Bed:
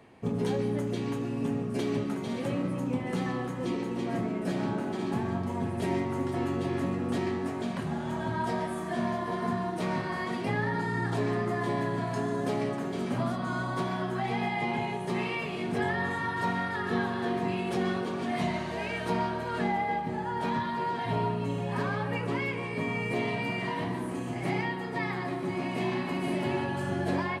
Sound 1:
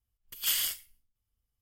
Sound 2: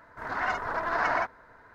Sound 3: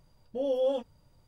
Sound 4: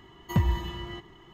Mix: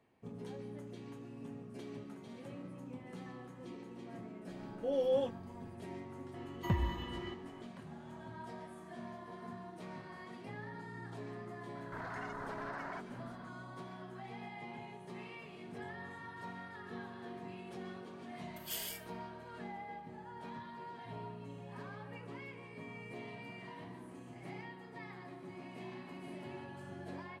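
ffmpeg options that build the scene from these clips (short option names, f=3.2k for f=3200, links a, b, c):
-filter_complex "[0:a]volume=-17dB[a];[4:a]bass=f=250:g=-4,treble=f=4k:g=-7[b];[2:a]acompressor=threshold=-38dB:ratio=6:attack=3.2:release=140:knee=1:detection=peak[c];[3:a]atrim=end=1.27,asetpts=PTS-STARTPTS,volume=-4dB,afade=t=in:d=0.004:c=hsin,afade=t=out:st=1.266:d=0.004:c=hsin,adelay=4480[d];[b]atrim=end=1.33,asetpts=PTS-STARTPTS,volume=-5.5dB,afade=t=in:d=0.004:c=hsin,afade=t=out:st=1.326:d=0.004:c=hsin,adelay=279594S[e];[c]atrim=end=1.74,asetpts=PTS-STARTPTS,volume=-3.5dB,afade=t=in:d=0.004:c=hsin,afade=t=out:st=1.736:d=0.004:c=hsin,adelay=11750[f];[1:a]atrim=end=1.61,asetpts=PTS-STARTPTS,volume=-13dB,afade=t=in:d=0.004:c=hsin,afade=t=out:st=1.606:d=0.004:c=hsin,adelay=18240[g];[a][d][e][f][g]amix=inputs=5:normalize=0"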